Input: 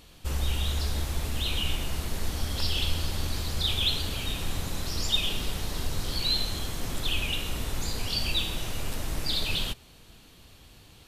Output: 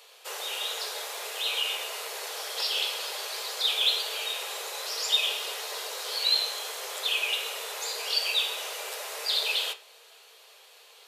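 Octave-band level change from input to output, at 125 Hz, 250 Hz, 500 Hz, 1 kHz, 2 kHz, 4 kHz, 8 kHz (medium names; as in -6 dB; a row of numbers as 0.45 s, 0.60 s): under -40 dB, under -20 dB, +1.5 dB, +3.0 dB, +4.0 dB, +3.0 dB, +2.5 dB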